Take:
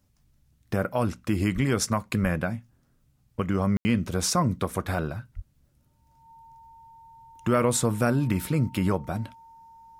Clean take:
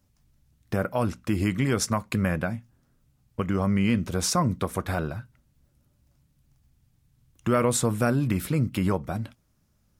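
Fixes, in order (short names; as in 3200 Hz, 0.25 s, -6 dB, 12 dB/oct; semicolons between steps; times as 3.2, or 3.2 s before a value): notch 910 Hz, Q 30; de-plosive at 1.54/2.22/5.35; room tone fill 3.77–3.85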